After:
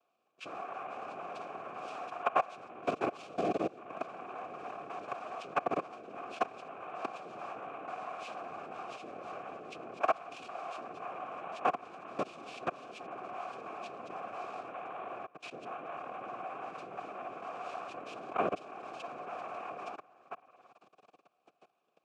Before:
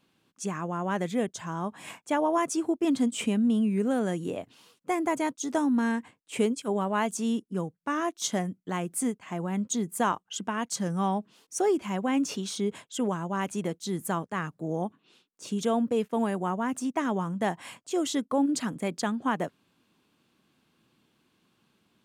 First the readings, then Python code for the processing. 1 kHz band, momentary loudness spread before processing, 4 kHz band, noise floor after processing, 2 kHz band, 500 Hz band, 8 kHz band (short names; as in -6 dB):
-4.5 dB, 8 LU, -13.5 dB, -76 dBFS, -7.5 dB, -8.5 dB, -26.5 dB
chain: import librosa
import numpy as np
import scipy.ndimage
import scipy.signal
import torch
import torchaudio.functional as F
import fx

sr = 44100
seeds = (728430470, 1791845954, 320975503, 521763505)

y = fx.reverse_delay(x, sr, ms=452, wet_db=-9)
y = fx.peak_eq(y, sr, hz=930.0, db=3.0, octaves=0.31)
y = fx.rev_spring(y, sr, rt60_s=1.0, pass_ms=(54,), chirp_ms=75, drr_db=3.0)
y = fx.level_steps(y, sr, step_db=22)
y = fx.dynamic_eq(y, sr, hz=3900.0, q=0.71, threshold_db=-54.0, ratio=4.0, max_db=6)
y = fx.noise_vocoder(y, sr, seeds[0], bands=3)
y = fx.vowel_filter(y, sr, vowel='a')
y = fx.band_squash(y, sr, depth_pct=40)
y = F.gain(torch.from_numpy(y), 12.0).numpy()